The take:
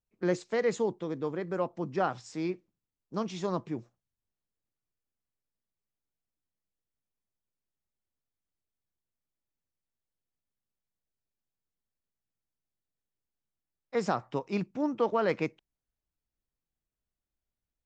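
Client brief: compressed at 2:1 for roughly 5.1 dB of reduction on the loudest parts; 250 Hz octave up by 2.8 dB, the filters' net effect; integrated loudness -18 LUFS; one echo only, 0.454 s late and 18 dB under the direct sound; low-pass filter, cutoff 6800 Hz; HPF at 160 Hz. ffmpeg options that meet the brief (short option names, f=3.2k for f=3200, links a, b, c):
-af "highpass=160,lowpass=6.8k,equalizer=f=250:t=o:g=5,acompressor=threshold=-31dB:ratio=2,aecho=1:1:454:0.126,volume=17dB"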